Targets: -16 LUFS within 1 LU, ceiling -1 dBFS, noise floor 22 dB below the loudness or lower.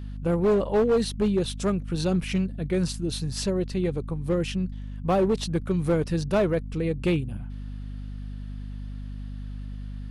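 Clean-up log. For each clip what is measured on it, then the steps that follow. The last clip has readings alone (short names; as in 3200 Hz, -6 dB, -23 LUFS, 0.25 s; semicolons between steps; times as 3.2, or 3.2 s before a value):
clipped 1.4%; flat tops at -17.0 dBFS; hum 50 Hz; harmonics up to 250 Hz; hum level -33 dBFS; loudness -26.0 LUFS; peak -17.0 dBFS; loudness target -16.0 LUFS
-> clip repair -17 dBFS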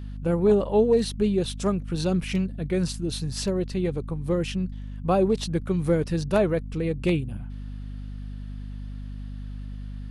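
clipped 0.0%; hum 50 Hz; harmonics up to 250 Hz; hum level -33 dBFS
-> notches 50/100/150/200/250 Hz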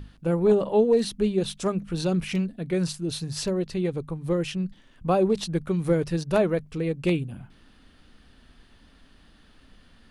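hum none; loudness -26.0 LUFS; peak -8.5 dBFS; loudness target -16.0 LUFS
-> gain +10 dB; limiter -1 dBFS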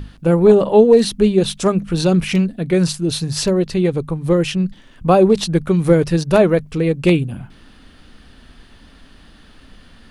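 loudness -16.0 LUFS; peak -1.0 dBFS; noise floor -46 dBFS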